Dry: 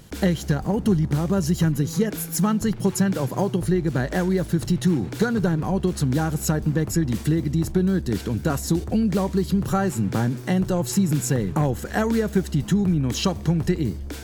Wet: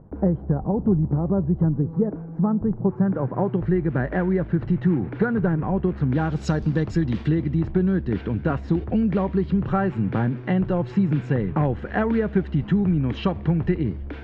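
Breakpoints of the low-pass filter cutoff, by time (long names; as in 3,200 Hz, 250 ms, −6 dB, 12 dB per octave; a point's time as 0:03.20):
low-pass filter 24 dB per octave
0:02.82 1,000 Hz
0:03.61 2,200 Hz
0:06.04 2,200 Hz
0:06.52 5,400 Hz
0:07.63 2,700 Hz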